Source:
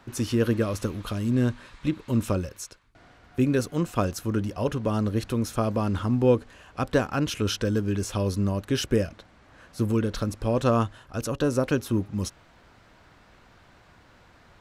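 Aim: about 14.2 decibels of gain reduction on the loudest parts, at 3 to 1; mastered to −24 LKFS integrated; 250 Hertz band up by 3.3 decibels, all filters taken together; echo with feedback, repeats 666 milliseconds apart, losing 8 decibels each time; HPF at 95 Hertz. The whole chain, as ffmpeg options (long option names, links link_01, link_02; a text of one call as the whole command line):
ffmpeg -i in.wav -af "highpass=95,equalizer=frequency=250:width_type=o:gain=4,acompressor=threshold=-35dB:ratio=3,aecho=1:1:666|1332|1998|2664|3330:0.398|0.159|0.0637|0.0255|0.0102,volume=12.5dB" out.wav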